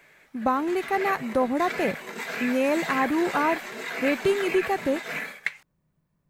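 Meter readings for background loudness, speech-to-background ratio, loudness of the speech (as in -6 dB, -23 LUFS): -32.5 LUFS, 6.5 dB, -26.0 LUFS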